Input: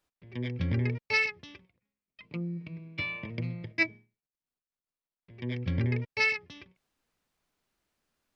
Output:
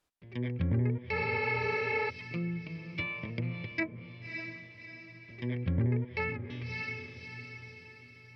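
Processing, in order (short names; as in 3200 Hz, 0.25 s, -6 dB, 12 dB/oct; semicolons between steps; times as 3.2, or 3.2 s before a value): diffused feedback echo 0.589 s, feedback 46%, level -10 dB; treble ducked by the level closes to 1200 Hz, closed at -27 dBFS; spectral repair 1.18–2.07, 250–5500 Hz before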